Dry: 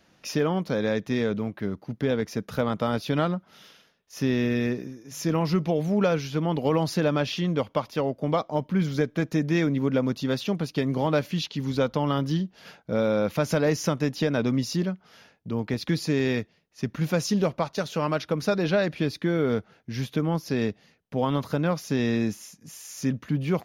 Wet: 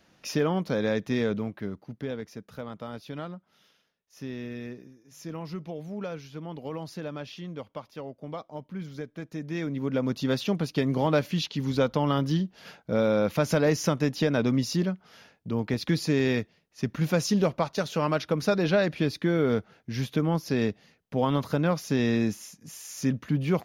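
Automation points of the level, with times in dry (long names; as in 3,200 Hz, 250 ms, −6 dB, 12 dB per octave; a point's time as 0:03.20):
0:01.32 −1 dB
0:02.48 −12.5 dB
0:09.27 −12.5 dB
0:10.23 0 dB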